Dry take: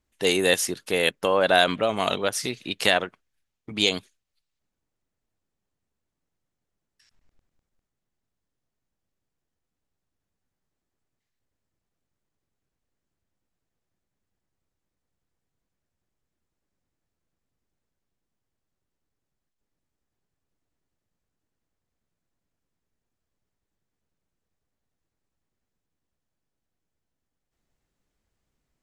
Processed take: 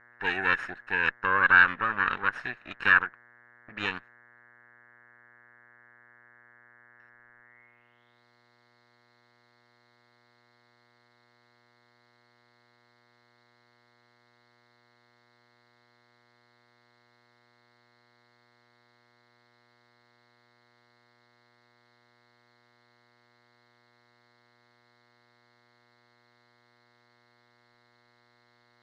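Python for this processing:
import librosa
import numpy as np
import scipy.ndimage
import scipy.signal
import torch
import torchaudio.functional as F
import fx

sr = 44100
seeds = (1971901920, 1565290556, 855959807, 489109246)

y = fx.lower_of_two(x, sr, delay_ms=0.75)
y = fx.low_shelf(y, sr, hz=440.0, db=-11.0)
y = fx.dmg_buzz(y, sr, base_hz=120.0, harmonics=18, level_db=-61.0, tilt_db=-1, odd_only=False)
y = fx.quant_dither(y, sr, seeds[0], bits=12, dither='triangular')
y = fx.filter_sweep_lowpass(y, sr, from_hz=1700.0, to_hz=4200.0, start_s=7.41, end_s=8.25, q=7.3)
y = y * librosa.db_to_amplitude(-5.5)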